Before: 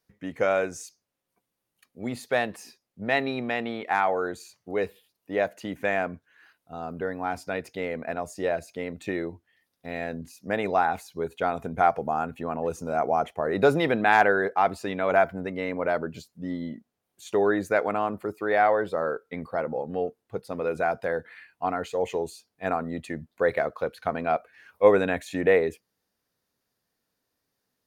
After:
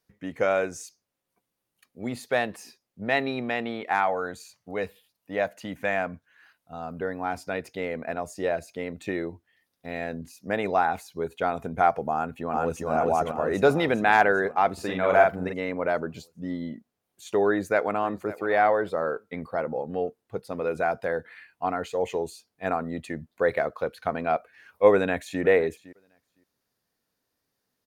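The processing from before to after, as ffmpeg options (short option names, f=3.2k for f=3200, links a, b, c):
-filter_complex "[0:a]asettb=1/sr,asplit=3[a][b][c];[a]atrim=end=4.044[d];[b]atrim=start=4.04:end=7,asetpts=PTS-STARTPTS,afade=t=in:d=0.004:c=qsin,afade=t=out:st=2.956:d=0.004:c=qsin,equalizer=f=370:t=o:w=0.37:g=-10.5[e];[c]atrim=start=6.996[f];[d][e]acrossfade=d=0.004:c1=hsin:c2=qsin[g];[g][f]acrossfade=d=0.004:c1=qsin:c2=hsin,asplit=2[h][i];[i]afade=t=in:st=12.13:d=0.01,afade=t=out:st=12.91:d=0.01,aecho=0:1:400|800|1200|1600|2000|2400|2800|3200|3600:0.944061|0.566437|0.339862|0.203917|0.12235|0.0734102|0.0440461|0.0264277|0.0158566[j];[h][j]amix=inputs=2:normalize=0,asplit=3[k][l][m];[k]afade=t=out:st=14.77:d=0.02[n];[l]asplit=2[o][p];[p]adelay=44,volume=-2dB[q];[o][q]amix=inputs=2:normalize=0,afade=t=in:st=14.77:d=0.02,afade=t=out:st=15.52:d=0.02[r];[m]afade=t=in:st=15.52:d=0.02[s];[n][r][s]amix=inputs=3:normalize=0,asplit=2[t][u];[u]afade=t=in:st=17.48:d=0.01,afade=t=out:st=18.28:d=0.01,aecho=0:1:550|1100:0.149624|0.0224435[v];[t][v]amix=inputs=2:normalize=0,asplit=2[w][x];[x]afade=t=in:st=24.93:d=0.01,afade=t=out:st=25.41:d=0.01,aecho=0:1:510|1020:0.125893|0.0125893[y];[w][y]amix=inputs=2:normalize=0"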